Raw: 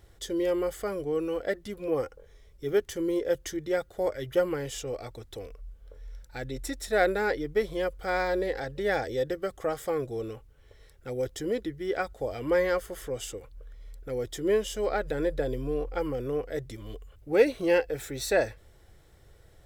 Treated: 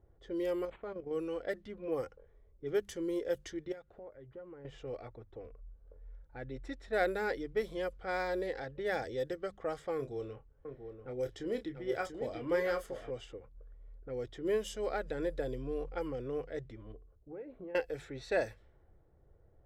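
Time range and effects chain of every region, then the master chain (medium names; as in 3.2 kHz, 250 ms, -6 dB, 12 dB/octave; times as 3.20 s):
0.65–1.11 s: level held to a coarse grid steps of 11 dB + decimation joined by straight lines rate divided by 8×
3.72–4.65 s: compression 2.5:1, threshold -46 dBFS + careless resampling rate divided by 3×, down none, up hold
9.96–13.11 s: doubling 29 ms -9 dB + delay 689 ms -7.5 dB
16.92–17.75 s: low-pass 1.1 kHz 6 dB/octave + compression, threshold -32 dBFS + feedback comb 63 Hz, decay 0.49 s, mix 40%
whole clip: hum notches 50/100/150/200 Hz; level-controlled noise filter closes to 760 Hz, open at -24 dBFS; trim -7 dB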